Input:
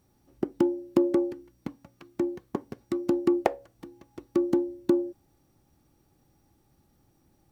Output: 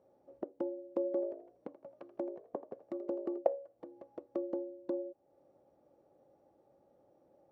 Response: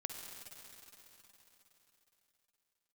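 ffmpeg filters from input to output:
-filter_complex "[0:a]acompressor=threshold=-46dB:ratio=2,bandpass=f=560:t=q:w=6.3:csg=0,asettb=1/sr,asplit=3[a][b][c];[a]atrim=end=1.094[d];[b]atrim=start=1.09:end=3.38,asetpts=PTS-STARTPTS,afade=t=in:d=0.004:c=qsin,afade=t=out:st=2.286:d=0.004:c=qsin,asplit=4[e][f][g][h];[f]adelay=82,afreqshift=54,volume=-14dB[i];[g]adelay=164,afreqshift=108,volume=-23.4dB[j];[h]adelay=246,afreqshift=162,volume=-32.7dB[k];[e][i][j][k]amix=inputs=4:normalize=0,atrim=end_sample=100989[l];[c]atrim=start=3.376[m];[d][l]acrossfade=d=0.004:c1=hsin:c2=qsin[n];[n][m]acrossfade=d=0.004:c1=qsin:c2=hsin,volume=15dB"

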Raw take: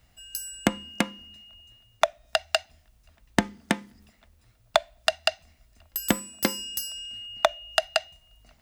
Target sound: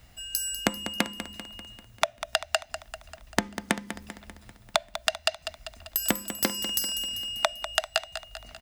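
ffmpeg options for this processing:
-af "acompressor=threshold=-32dB:ratio=3,aecho=1:1:196|392|588|784|980|1176:0.282|0.158|0.0884|0.0495|0.0277|0.0155,volume=7dB"

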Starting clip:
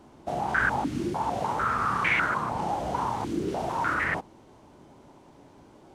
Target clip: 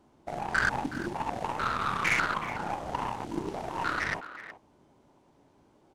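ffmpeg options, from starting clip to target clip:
-filter_complex "[0:a]aeval=exprs='0.251*(cos(1*acos(clip(val(0)/0.251,-1,1)))-cos(1*PI/2))+0.00708*(cos(6*acos(clip(val(0)/0.251,-1,1)))-cos(6*PI/2))+0.0224*(cos(7*acos(clip(val(0)/0.251,-1,1)))-cos(7*PI/2))':c=same,asplit=2[a][b];[b]adelay=370,highpass=300,lowpass=3.4k,asoftclip=type=hard:threshold=-20.5dB,volume=-12dB[c];[a][c]amix=inputs=2:normalize=0,volume=-1.5dB"

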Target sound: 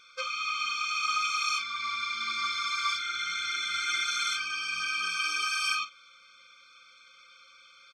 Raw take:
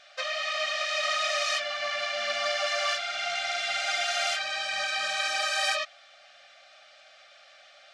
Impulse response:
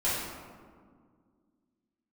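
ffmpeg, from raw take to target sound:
-filter_complex "[0:a]asplit=2[a][b];[b]adelay=43,volume=-12.5dB[c];[a][c]amix=inputs=2:normalize=0,afftfilt=real='re*eq(mod(floor(b*sr/1024/520),2),0)':imag='im*eq(mod(floor(b*sr/1024/520),2),0)':win_size=1024:overlap=0.75,volume=1.5dB"

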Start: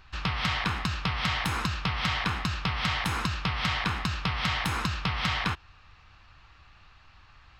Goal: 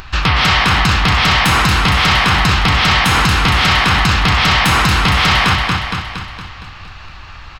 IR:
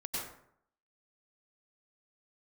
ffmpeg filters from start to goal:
-af "acompressor=mode=upward:threshold=-49dB:ratio=2.5,aecho=1:1:232|464|696|928|1160|1392|1624:0.447|0.246|0.135|0.0743|0.0409|0.0225|0.0124,apsyclip=26dB,volume=-7dB"

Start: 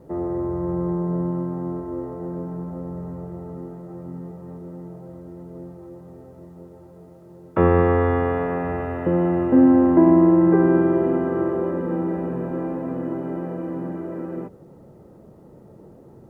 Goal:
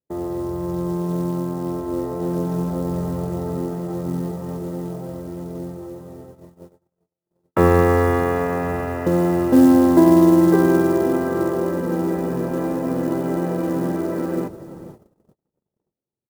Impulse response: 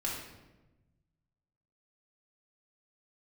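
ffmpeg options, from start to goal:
-filter_complex "[0:a]acrusher=bits=8:mode=log:mix=0:aa=0.000001,highshelf=f=2.2k:g=6.5,dynaudnorm=f=860:g=5:m=11dB,asplit=2[a][b];[b]adelay=484,volume=-17dB,highshelf=f=4k:g=-10.9[c];[a][c]amix=inputs=2:normalize=0,agate=range=-45dB:threshold=-37dB:ratio=16:detection=peak,volume=-1dB"

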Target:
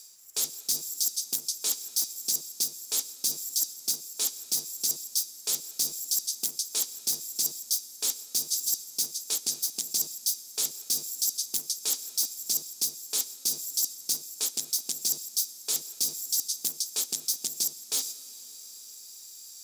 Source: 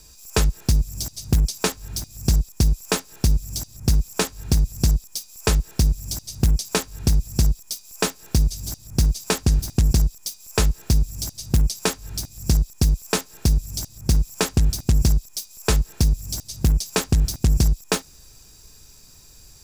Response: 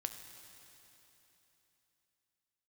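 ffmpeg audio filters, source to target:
-filter_complex "[0:a]agate=range=-11dB:threshold=-39dB:ratio=16:detection=peak,highpass=f=280:w=0.5412,highpass=f=280:w=1.3066,equalizer=f=2.7k:w=4.9:g=-7,areverse,acompressor=threshold=-40dB:ratio=8,areverse,aexciter=amount=5.8:drive=6.6:freq=2.6k,acrusher=bits=9:mix=0:aa=0.000001,asplit=2[a][b];[1:a]atrim=start_sample=2205,asetrate=31311,aresample=44100[c];[b][c]afir=irnorm=-1:irlink=0,volume=-7dB[d];[a][d]amix=inputs=2:normalize=0,volume=-7dB"

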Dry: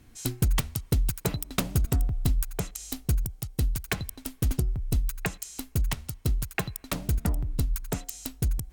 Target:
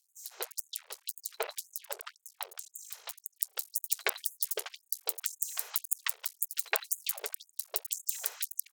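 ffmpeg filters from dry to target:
-filter_complex "[0:a]asetnsamples=n=441:p=0,asendcmd='3.36 highshelf g 7.5',highshelf=f=5.1k:g=-5.5,aeval=exprs='max(val(0),0)':c=same,acrossover=split=5000[a][b];[a]adelay=150[c];[c][b]amix=inputs=2:normalize=0,afftfilt=real='re*gte(b*sr/1024,360*pow(6600/360,0.5+0.5*sin(2*PI*1.9*pts/sr)))':imag='im*gte(b*sr/1024,360*pow(6600/360,0.5+0.5*sin(2*PI*1.9*pts/sr)))':win_size=1024:overlap=0.75,volume=4dB"

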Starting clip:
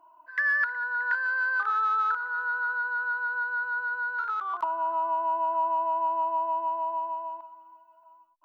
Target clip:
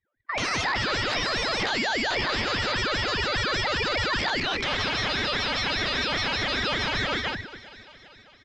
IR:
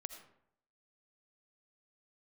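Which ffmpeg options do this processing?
-filter_complex "[0:a]lowshelf=f=340:g=8.5,agate=range=-32dB:threshold=-46dB:ratio=16:detection=peak,acrossover=split=1700[a][b];[a]aeval=exprs='val(0)*gte(abs(val(0)),0.0211)':c=same[c];[c][b]amix=inputs=2:normalize=0,acompressor=threshold=-29dB:ratio=4,aeval=exprs='0.0944*sin(PI/2*7.08*val(0)/0.0944)':c=same,aecho=1:1:0.9:0.33,asplit=2[d][e];[e]aecho=0:1:389|778|1167|1556|1945:0.0794|0.0477|0.0286|0.0172|0.0103[f];[d][f]amix=inputs=2:normalize=0,afreqshift=-66,lowpass=f=4.3k:w=0.5412,lowpass=f=4.3k:w=1.3066,alimiter=limit=-22.5dB:level=0:latency=1:release=22,aeval=exprs='val(0)*sin(2*PI*660*n/s+660*0.55/5*sin(2*PI*5*n/s))':c=same,volume=6.5dB"

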